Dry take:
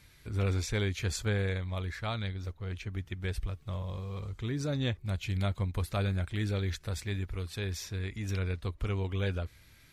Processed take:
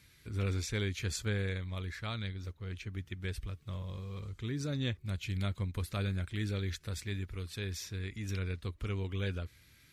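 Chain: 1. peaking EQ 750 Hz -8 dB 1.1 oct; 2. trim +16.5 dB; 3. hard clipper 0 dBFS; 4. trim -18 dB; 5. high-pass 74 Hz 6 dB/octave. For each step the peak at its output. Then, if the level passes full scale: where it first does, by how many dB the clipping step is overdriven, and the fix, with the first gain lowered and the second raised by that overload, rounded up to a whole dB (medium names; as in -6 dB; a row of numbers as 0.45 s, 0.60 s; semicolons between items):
-19.5 dBFS, -3.0 dBFS, -3.0 dBFS, -21.0 dBFS, -22.0 dBFS; nothing clips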